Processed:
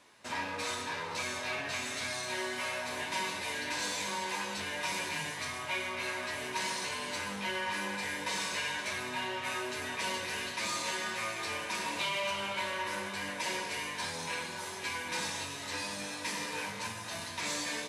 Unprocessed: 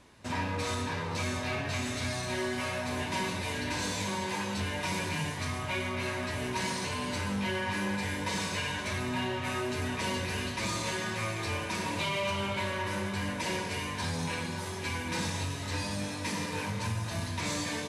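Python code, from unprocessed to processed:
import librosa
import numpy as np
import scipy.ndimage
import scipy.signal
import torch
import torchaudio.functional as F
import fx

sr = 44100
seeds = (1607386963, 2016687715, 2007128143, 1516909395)

y = fx.highpass(x, sr, hz=680.0, slope=6)
y = fx.doubler(y, sr, ms=14.0, db=-11.0)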